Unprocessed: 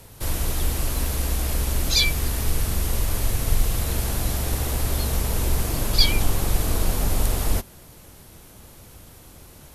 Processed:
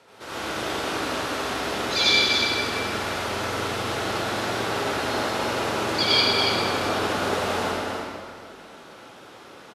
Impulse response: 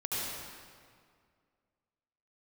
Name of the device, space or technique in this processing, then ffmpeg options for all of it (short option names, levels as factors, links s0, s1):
station announcement: -filter_complex "[0:a]highpass=340,lowpass=4100,equalizer=f=1400:t=o:w=0.28:g=7,aecho=1:1:81.63|282.8:0.282|0.562[s0];[1:a]atrim=start_sample=2205[s1];[s0][s1]afir=irnorm=-1:irlink=0"